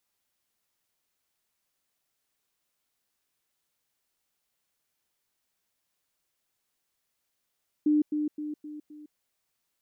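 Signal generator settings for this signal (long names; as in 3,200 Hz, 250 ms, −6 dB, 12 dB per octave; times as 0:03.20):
level staircase 300 Hz −19.5 dBFS, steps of −6 dB, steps 5, 0.16 s 0.10 s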